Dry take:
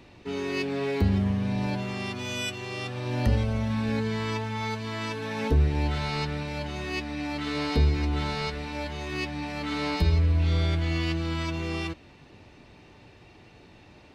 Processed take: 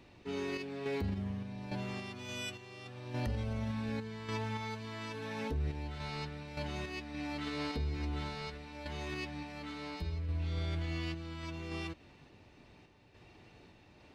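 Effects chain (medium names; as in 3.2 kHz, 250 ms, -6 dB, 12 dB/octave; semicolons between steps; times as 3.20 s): random-step tremolo, depth 70%; peak limiter -22.5 dBFS, peak gain reduction 9 dB; trim -5.5 dB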